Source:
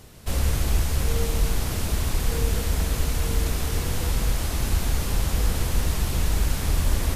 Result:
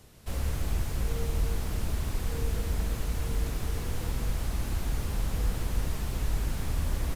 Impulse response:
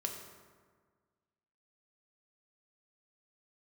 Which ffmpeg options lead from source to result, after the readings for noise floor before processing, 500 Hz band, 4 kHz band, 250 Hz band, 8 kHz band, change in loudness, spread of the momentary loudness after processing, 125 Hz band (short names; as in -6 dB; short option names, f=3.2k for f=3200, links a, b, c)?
-29 dBFS, -7.0 dB, -10.5 dB, -6.5 dB, -11.0 dB, -7.0 dB, 2 LU, -6.5 dB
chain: -filter_complex "[0:a]acrossover=split=440|2400[a][b][c];[a]aecho=1:1:319:0.631[d];[c]asoftclip=type=tanh:threshold=-35.5dB[e];[d][b][e]amix=inputs=3:normalize=0,volume=-7.5dB"